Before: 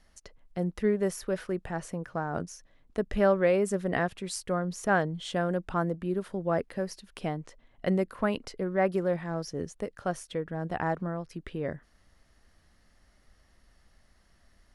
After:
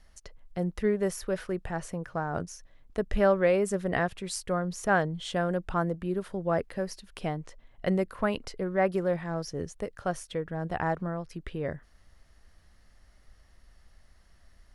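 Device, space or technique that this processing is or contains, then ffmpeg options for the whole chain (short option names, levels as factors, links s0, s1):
low shelf boost with a cut just above: -af "lowshelf=f=84:g=6,equalizer=f=250:t=o:w=1.1:g=-3.5,volume=1.12"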